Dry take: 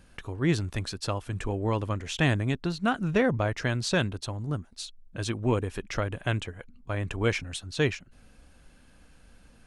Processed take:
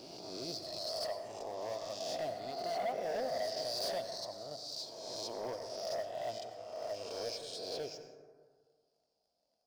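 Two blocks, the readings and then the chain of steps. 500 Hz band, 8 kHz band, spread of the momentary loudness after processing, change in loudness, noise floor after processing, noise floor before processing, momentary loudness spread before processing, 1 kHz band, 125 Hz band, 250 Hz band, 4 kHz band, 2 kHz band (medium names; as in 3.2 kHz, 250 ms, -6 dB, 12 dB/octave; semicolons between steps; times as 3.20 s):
-6.0 dB, -7.0 dB, 8 LU, -10.5 dB, -81 dBFS, -56 dBFS, 10 LU, -6.0 dB, -29.5 dB, -21.0 dB, -4.0 dB, -19.0 dB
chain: reverse spectral sustain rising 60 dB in 1.51 s; reverb removal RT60 0.8 s; two resonant band-passes 1.8 kHz, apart 2.9 oct; in parallel at -8 dB: word length cut 6-bit, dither none; on the sum: saturation -27 dBFS, distortion -17 dB; waveshaping leveller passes 2; on a send: reverse echo 383 ms -12 dB; on the sum: plate-style reverb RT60 1.7 s, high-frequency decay 0.35×, pre-delay 75 ms, DRR 7.5 dB; trim -5.5 dB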